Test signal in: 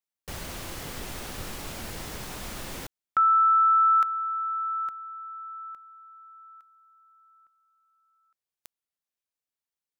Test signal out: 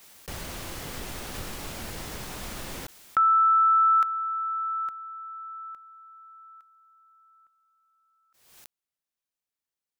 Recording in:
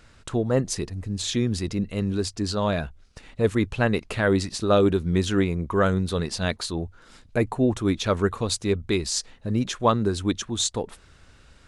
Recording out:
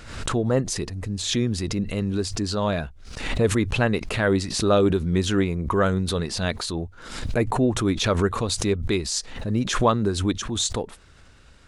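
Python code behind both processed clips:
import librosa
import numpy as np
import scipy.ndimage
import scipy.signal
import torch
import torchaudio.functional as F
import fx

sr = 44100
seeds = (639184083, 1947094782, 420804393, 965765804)

y = fx.pre_swell(x, sr, db_per_s=63.0)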